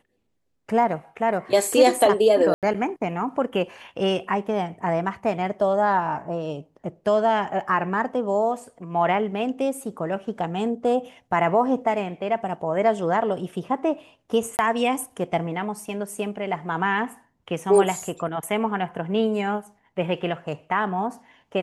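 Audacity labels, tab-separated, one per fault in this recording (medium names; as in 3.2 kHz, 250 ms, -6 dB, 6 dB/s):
2.540000	2.630000	dropout 87 ms
14.570000	14.590000	dropout 19 ms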